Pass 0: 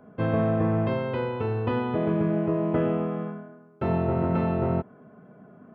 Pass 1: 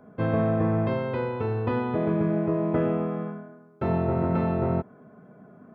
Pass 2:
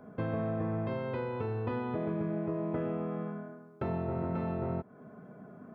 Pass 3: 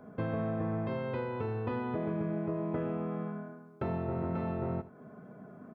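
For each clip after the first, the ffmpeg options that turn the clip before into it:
-af "bandreject=f=2.9k:w=6.5"
-af "acompressor=threshold=-35dB:ratio=2.5"
-af "aecho=1:1:78:0.15"

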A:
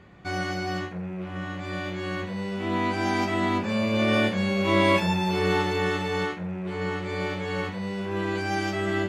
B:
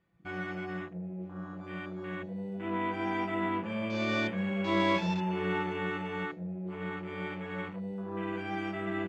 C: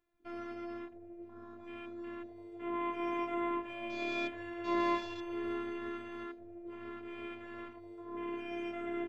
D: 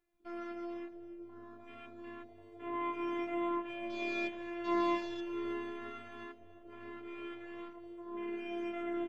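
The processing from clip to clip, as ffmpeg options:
-af "afwtdn=0.02,aecho=1:1:6:0.54,volume=-8.5dB"
-af "afftfilt=real='hypot(re,im)*cos(PI*b)':imag='0':win_size=512:overlap=0.75,volume=-1.5dB"
-af "flanger=delay=5.3:depth=2.3:regen=-32:speed=0.24:shape=triangular,aecho=1:1:308|616|924|1232:0.112|0.0527|0.0248|0.0116,volume=2.5dB"

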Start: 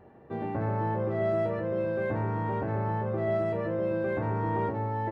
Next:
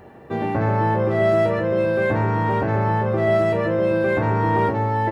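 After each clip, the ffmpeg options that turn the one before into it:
-af "highshelf=f=2.2k:g=10.5,volume=9dB"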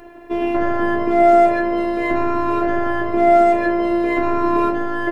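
-af "afftfilt=real='hypot(re,im)*cos(PI*b)':imag='0':win_size=512:overlap=0.75,volume=7.5dB"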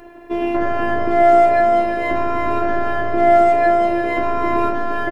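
-af "aecho=1:1:347:0.531"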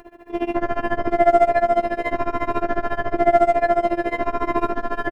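-af "tremolo=f=14:d=0.92"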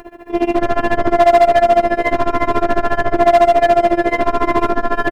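-af "volume=13dB,asoftclip=hard,volume=-13dB,volume=8dB"

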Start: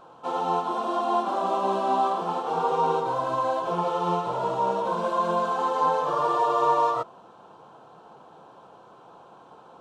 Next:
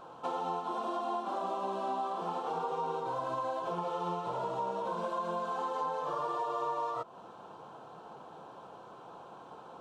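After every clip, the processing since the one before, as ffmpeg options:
-af "acompressor=threshold=-33dB:ratio=5"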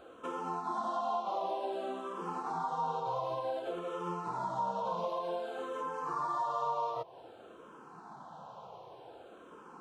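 -filter_complex "[0:a]asplit=2[a][b];[b]afreqshift=-0.54[c];[a][c]amix=inputs=2:normalize=1,volume=2dB"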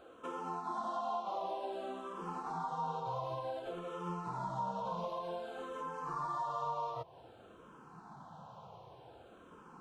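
-af "asubboost=boost=3.5:cutoff=180,volume=-3dB"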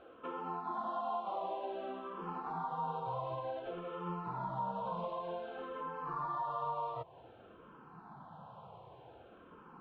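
-af "lowpass=f=3.4k:w=0.5412,lowpass=f=3.4k:w=1.3066"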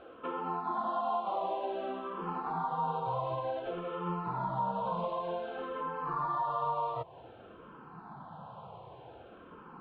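-af "aresample=11025,aresample=44100,volume=5dB"

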